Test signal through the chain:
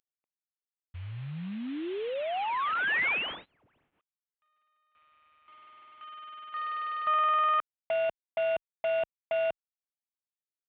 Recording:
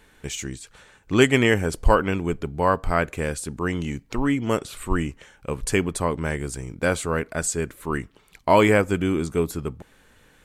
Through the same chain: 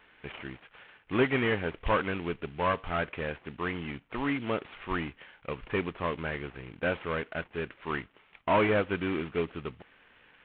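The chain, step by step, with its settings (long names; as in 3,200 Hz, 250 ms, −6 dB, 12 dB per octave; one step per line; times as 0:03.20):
variable-slope delta modulation 16 kbit/s
spectral tilt +2.5 dB per octave
level −3.5 dB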